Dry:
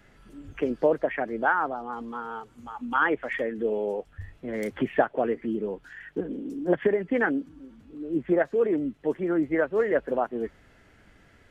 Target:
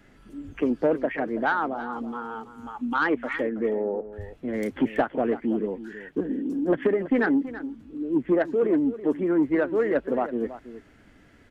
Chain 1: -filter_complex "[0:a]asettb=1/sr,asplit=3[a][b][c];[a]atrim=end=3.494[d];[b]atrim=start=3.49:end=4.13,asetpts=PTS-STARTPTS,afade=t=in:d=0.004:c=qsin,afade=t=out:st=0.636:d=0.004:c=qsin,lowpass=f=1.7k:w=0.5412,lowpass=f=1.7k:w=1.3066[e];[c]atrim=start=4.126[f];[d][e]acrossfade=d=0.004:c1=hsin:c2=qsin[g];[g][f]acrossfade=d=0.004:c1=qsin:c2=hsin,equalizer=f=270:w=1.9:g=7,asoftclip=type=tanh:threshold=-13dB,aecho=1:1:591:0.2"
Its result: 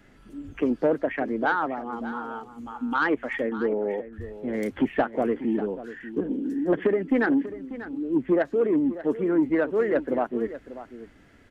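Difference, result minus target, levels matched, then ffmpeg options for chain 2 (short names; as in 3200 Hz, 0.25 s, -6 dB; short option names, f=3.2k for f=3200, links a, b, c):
echo 0.263 s late
-filter_complex "[0:a]asettb=1/sr,asplit=3[a][b][c];[a]atrim=end=3.494[d];[b]atrim=start=3.49:end=4.13,asetpts=PTS-STARTPTS,afade=t=in:d=0.004:c=qsin,afade=t=out:st=0.636:d=0.004:c=qsin,lowpass=f=1.7k:w=0.5412,lowpass=f=1.7k:w=1.3066[e];[c]atrim=start=4.126[f];[d][e]acrossfade=d=0.004:c1=hsin:c2=qsin[g];[g][f]acrossfade=d=0.004:c1=qsin:c2=hsin,equalizer=f=270:w=1.9:g=7,asoftclip=type=tanh:threshold=-13dB,aecho=1:1:328:0.2"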